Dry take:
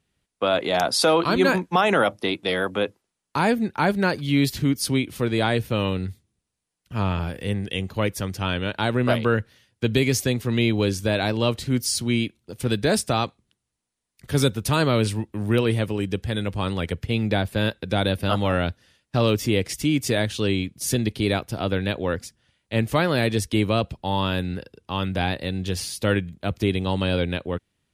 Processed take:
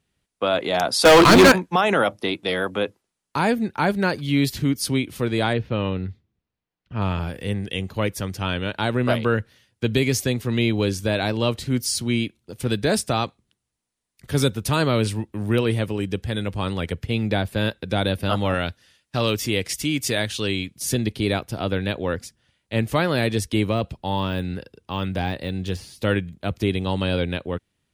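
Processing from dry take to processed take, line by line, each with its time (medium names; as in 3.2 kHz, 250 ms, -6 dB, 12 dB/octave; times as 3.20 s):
1.05–1.52 s: waveshaping leveller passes 5
5.53–7.02 s: distance through air 230 m
18.54–20.82 s: tilt shelf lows -3.5 dB, about 1.1 kHz
23.70–26.03 s: de-esser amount 85%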